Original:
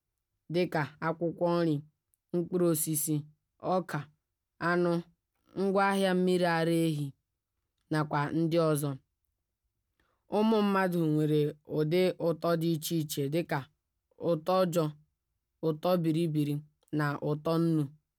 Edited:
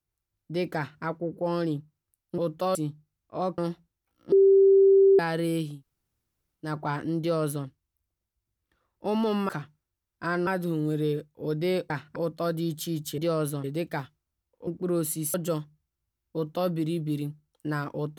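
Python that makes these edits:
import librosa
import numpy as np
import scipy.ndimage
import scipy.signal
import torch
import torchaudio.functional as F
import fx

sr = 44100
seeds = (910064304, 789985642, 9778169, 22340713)

y = fx.edit(x, sr, fx.duplicate(start_s=0.77, length_s=0.26, to_s=12.2),
    fx.swap(start_s=2.38, length_s=0.67, other_s=14.25, other_length_s=0.37),
    fx.move(start_s=3.88, length_s=0.98, to_s=10.77),
    fx.bleep(start_s=5.6, length_s=0.87, hz=390.0, db=-14.0),
    fx.room_tone_fill(start_s=7.01, length_s=0.92, crossfade_s=0.24),
    fx.duplicate(start_s=8.48, length_s=0.46, to_s=13.22), tone=tone)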